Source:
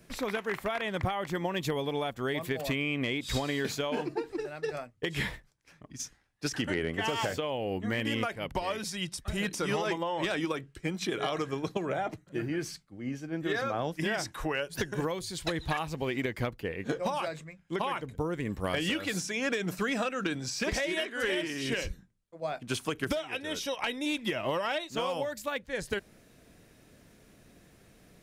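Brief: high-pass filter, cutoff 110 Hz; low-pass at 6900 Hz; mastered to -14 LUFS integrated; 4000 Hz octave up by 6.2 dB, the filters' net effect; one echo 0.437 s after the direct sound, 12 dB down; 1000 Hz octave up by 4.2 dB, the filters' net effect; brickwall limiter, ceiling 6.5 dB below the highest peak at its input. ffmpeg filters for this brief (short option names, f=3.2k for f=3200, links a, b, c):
-af "highpass=110,lowpass=6.9k,equalizer=f=1k:t=o:g=5,equalizer=f=4k:t=o:g=8.5,alimiter=limit=-20.5dB:level=0:latency=1,aecho=1:1:437:0.251,volume=17.5dB"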